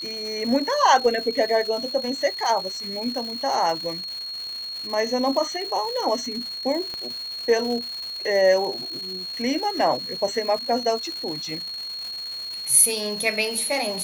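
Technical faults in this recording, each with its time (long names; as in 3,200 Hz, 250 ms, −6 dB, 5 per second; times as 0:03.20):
surface crackle 430 per second −31 dBFS
whistle 4,300 Hz −30 dBFS
0:06.94: click −18 dBFS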